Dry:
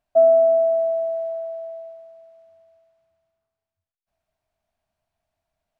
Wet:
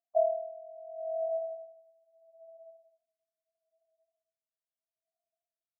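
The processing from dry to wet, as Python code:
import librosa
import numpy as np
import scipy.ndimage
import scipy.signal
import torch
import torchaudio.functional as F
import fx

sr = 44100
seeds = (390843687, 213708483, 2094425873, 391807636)

p1 = fx.sine_speech(x, sr)
p2 = scipy.signal.sosfilt(scipy.signal.butter(4, 1000.0, 'lowpass', fs=sr, output='sos'), p1)
p3 = p2 + fx.echo_banded(p2, sr, ms=266, feedback_pct=83, hz=380.0, wet_db=-23.5, dry=0)
p4 = p3 * 10.0 ** (-25 * (0.5 - 0.5 * np.cos(2.0 * np.pi * 0.76 * np.arange(len(p3)) / sr)) / 20.0)
y = p4 * 10.0 ** (-5.5 / 20.0)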